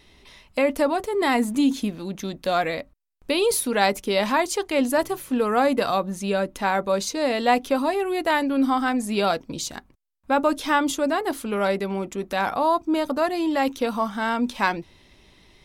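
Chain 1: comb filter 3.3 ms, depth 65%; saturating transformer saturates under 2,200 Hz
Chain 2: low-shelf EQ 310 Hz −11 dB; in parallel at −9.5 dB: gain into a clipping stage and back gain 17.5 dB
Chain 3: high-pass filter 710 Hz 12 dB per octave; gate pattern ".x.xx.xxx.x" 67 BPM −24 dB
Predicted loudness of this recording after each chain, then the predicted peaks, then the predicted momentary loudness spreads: −24.5, −23.5, −28.5 LKFS; −4.5, −4.5, −6.0 dBFS; 8, 7, 15 LU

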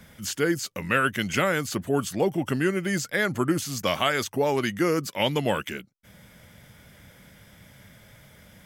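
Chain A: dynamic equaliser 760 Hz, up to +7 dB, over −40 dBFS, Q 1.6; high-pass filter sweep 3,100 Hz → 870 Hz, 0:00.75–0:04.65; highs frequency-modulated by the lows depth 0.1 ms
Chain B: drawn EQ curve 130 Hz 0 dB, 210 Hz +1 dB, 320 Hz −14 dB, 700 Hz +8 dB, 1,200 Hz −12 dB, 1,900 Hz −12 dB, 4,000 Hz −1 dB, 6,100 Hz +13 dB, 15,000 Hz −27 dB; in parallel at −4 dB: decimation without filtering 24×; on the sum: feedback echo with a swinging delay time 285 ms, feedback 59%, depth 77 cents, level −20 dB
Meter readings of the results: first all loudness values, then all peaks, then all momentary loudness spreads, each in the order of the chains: −24.0, −24.0 LKFS; −5.5, −6.5 dBFS; 14, 5 LU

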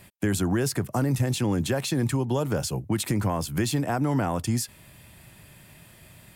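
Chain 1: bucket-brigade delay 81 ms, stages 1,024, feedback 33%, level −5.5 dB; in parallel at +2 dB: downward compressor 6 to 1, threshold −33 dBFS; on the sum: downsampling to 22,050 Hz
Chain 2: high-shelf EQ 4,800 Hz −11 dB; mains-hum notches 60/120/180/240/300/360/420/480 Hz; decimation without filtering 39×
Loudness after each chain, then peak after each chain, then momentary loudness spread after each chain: −23.0, −27.5 LKFS; −9.5, −15.0 dBFS; 21, 4 LU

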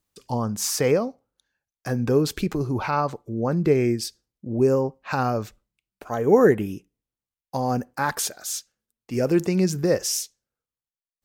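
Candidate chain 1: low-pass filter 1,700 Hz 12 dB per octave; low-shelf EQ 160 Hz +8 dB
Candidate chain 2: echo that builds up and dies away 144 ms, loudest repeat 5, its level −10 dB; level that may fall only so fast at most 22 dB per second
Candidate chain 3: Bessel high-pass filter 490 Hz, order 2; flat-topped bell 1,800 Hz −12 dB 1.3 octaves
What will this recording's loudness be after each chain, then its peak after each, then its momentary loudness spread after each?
−22.0, −20.5, −28.0 LKFS; −4.0, −3.5, −9.0 dBFS; 11, 7, 12 LU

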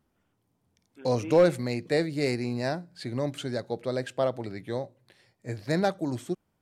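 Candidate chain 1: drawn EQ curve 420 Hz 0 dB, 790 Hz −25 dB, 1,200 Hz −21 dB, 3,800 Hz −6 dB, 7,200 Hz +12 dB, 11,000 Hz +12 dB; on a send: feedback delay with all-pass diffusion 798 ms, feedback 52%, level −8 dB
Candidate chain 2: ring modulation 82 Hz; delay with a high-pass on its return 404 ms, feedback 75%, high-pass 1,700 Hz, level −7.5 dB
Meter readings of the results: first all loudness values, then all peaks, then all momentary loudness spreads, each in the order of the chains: −31.5, −32.0 LKFS; −13.5, −12.0 dBFS; 11, 15 LU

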